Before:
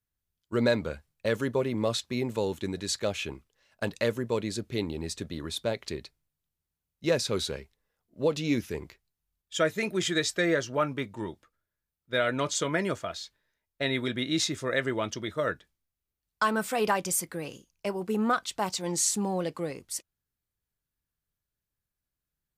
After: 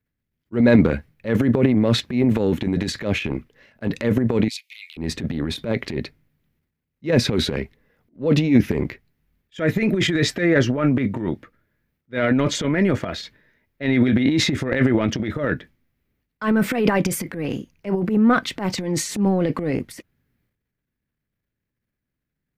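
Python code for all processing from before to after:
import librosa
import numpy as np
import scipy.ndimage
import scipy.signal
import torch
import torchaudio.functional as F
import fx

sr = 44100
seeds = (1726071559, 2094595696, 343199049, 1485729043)

y = fx.chain(x, sr, fx.steep_highpass(hz=2200.0, slope=72),
    fx.transformer_sat(knee_hz=1800.0), at=(4.48, 4.97))
y = fx.graphic_eq(y, sr, hz=(125, 250, 500, 2000, 8000), db=(6, 11, 5, 12, -8))
y = fx.transient(y, sr, attack_db=-10, sustain_db=11)
y = fx.low_shelf(y, sr, hz=480.0, db=7.0)
y = y * librosa.db_to_amplitude(-3.5)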